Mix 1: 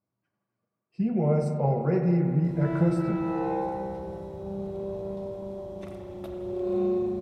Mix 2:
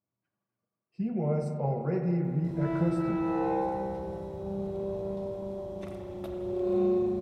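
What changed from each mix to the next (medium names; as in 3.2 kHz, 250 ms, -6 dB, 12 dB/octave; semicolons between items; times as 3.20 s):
speech -5.0 dB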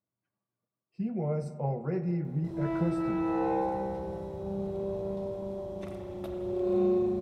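speech: send -9.0 dB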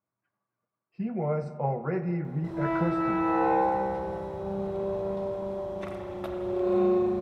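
speech: add distance through air 100 m; master: add peaking EQ 1.4 kHz +10.5 dB 2.3 oct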